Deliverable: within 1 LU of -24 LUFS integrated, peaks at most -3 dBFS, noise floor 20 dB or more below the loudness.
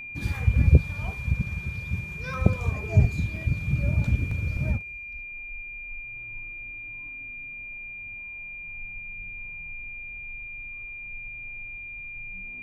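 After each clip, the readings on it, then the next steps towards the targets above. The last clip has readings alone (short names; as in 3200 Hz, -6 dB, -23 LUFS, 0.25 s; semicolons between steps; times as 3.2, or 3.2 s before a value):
dropouts 2; longest dropout 3.6 ms; steady tone 2400 Hz; tone level -36 dBFS; loudness -29.5 LUFS; peak -3.0 dBFS; loudness target -24.0 LUFS
-> interpolate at 3.36/4.31, 3.6 ms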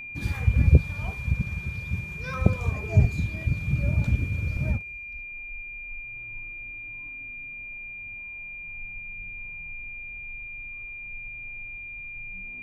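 dropouts 0; steady tone 2400 Hz; tone level -36 dBFS
-> notch 2400 Hz, Q 30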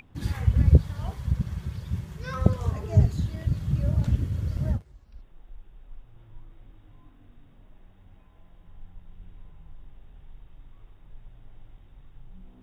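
steady tone none; loudness -26.5 LUFS; peak -3.0 dBFS; loudness target -24.0 LUFS
-> gain +2.5 dB; limiter -3 dBFS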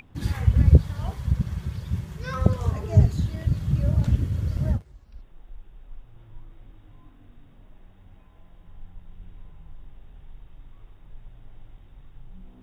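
loudness -24.0 LUFS; peak -3.0 dBFS; noise floor -52 dBFS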